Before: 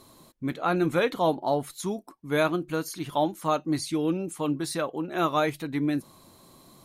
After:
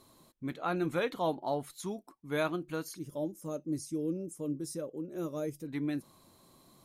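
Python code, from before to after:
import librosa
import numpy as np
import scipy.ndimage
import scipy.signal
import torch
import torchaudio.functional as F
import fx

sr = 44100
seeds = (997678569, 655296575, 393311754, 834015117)

y = fx.spec_box(x, sr, start_s=2.97, length_s=2.7, low_hz=620.0, high_hz=4800.0, gain_db=-16)
y = F.gain(torch.from_numpy(y), -7.5).numpy()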